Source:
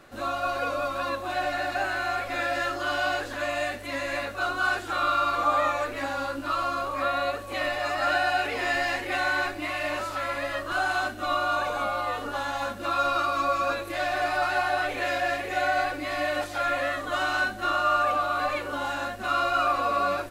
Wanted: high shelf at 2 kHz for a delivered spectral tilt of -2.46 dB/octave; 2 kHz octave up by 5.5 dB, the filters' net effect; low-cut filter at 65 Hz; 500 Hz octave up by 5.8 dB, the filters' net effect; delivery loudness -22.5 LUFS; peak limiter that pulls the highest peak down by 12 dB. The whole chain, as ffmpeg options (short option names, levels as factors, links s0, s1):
-af "highpass=65,equalizer=f=500:t=o:g=6.5,highshelf=f=2000:g=6.5,equalizer=f=2000:t=o:g=3.5,volume=1.78,alimiter=limit=0.178:level=0:latency=1"